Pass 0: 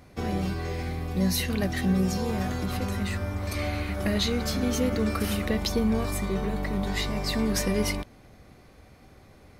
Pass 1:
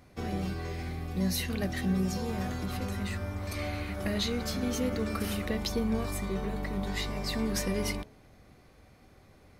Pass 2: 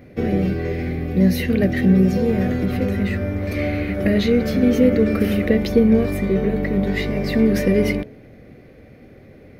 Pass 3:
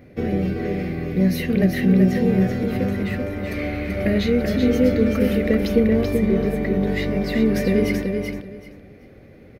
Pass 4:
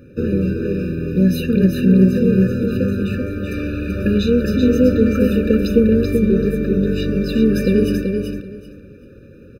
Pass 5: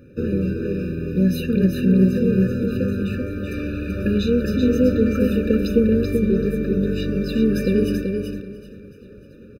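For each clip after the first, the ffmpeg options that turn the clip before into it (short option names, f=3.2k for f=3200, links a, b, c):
-af "bandreject=f=70.86:t=h:w=4,bandreject=f=141.72:t=h:w=4,bandreject=f=212.58:t=h:w=4,bandreject=f=283.44:t=h:w=4,bandreject=f=354.3:t=h:w=4,bandreject=f=425.16:t=h:w=4,bandreject=f=496.02:t=h:w=4,bandreject=f=566.88:t=h:w=4,bandreject=f=637.74:t=h:w=4,bandreject=f=708.6:t=h:w=4,bandreject=f=779.46:t=h:w=4,bandreject=f=850.32:t=h:w=4,bandreject=f=921.18:t=h:w=4,bandreject=f=992.04:t=h:w=4,volume=-4.5dB"
-af "equalizer=f=125:t=o:w=1:g=6,equalizer=f=250:t=o:w=1:g=7,equalizer=f=500:t=o:w=1:g=11,equalizer=f=1k:t=o:w=1:g=-10,equalizer=f=2k:t=o:w=1:g=8,equalizer=f=4k:t=o:w=1:g=-3,equalizer=f=8k:t=o:w=1:g=-12,volume=6.5dB"
-af "aecho=1:1:383|766|1149:0.562|0.112|0.0225,volume=-2.5dB"
-af "afftfilt=real='re*eq(mod(floor(b*sr/1024/590),2),0)':imag='im*eq(mod(floor(b*sr/1024/590),2),0)':win_size=1024:overlap=0.75,volume=4dB"
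-af "aecho=1:1:679|1358|2037|2716:0.0708|0.0382|0.0206|0.0111,volume=-3.5dB"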